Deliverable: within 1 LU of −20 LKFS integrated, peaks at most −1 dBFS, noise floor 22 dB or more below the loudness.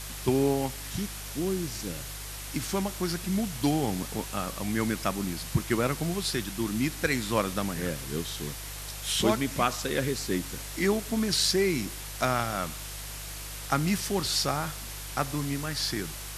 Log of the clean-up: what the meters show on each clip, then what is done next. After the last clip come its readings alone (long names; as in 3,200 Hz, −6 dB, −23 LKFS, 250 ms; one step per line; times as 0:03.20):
mains hum 50 Hz; hum harmonics up to 150 Hz; level of the hum −40 dBFS; background noise floor −39 dBFS; target noise floor −52 dBFS; integrated loudness −29.5 LKFS; sample peak −9.0 dBFS; target loudness −20.0 LKFS
→ hum removal 50 Hz, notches 3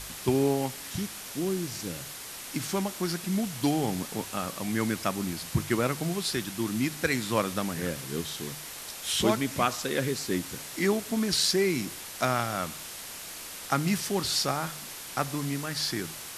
mains hum none found; background noise floor −41 dBFS; target noise floor −52 dBFS
→ noise reduction from a noise print 11 dB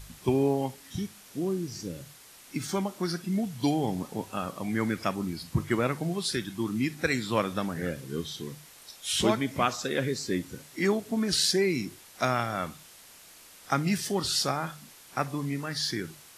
background noise floor −52 dBFS; integrated loudness −30.0 LKFS; sample peak −9.5 dBFS; target loudness −20.0 LKFS
→ level +10 dB
brickwall limiter −1 dBFS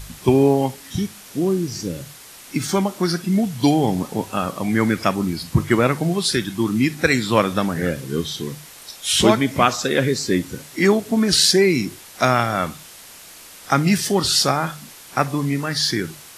integrated loudness −20.0 LKFS; sample peak −1.0 dBFS; background noise floor −42 dBFS